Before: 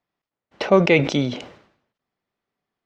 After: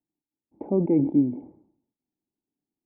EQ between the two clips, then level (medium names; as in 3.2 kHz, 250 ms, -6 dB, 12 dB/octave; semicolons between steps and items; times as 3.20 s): cascade formant filter u; bass shelf 410 Hz +8 dB; -1.0 dB